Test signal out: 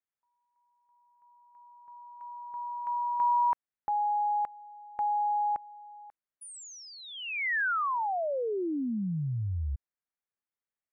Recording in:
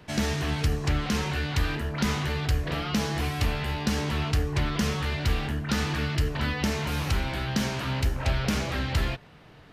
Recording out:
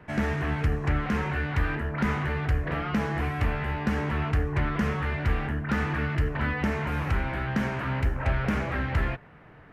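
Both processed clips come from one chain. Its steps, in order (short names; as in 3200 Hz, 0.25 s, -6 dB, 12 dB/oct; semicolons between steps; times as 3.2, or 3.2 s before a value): resonant high shelf 2800 Hz -13.5 dB, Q 1.5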